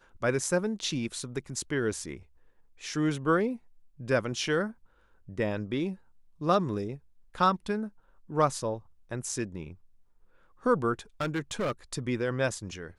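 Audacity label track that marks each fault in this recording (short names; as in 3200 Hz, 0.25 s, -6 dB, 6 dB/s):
11.210000	11.720000	clipped -26 dBFS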